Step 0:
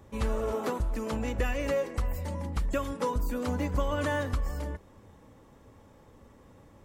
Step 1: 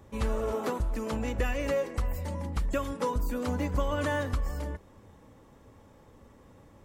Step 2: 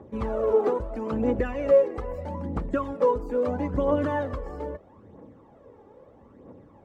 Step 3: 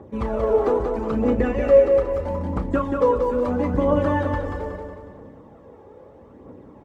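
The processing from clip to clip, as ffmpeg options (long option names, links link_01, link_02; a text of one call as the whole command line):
ffmpeg -i in.wav -af anull out.wav
ffmpeg -i in.wav -af "bandpass=frequency=420:width_type=q:width=0.86:csg=0,aphaser=in_gain=1:out_gain=1:delay=2.6:decay=0.54:speed=0.77:type=triangular,volume=7dB" out.wav
ffmpeg -i in.wav -filter_complex "[0:a]asplit=2[link_01][link_02];[link_02]adelay=33,volume=-10.5dB[link_03];[link_01][link_03]amix=inputs=2:normalize=0,aecho=1:1:183|366|549|732|915|1098:0.562|0.253|0.114|0.0512|0.0231|0.0104,volume=3.5dB" out.wav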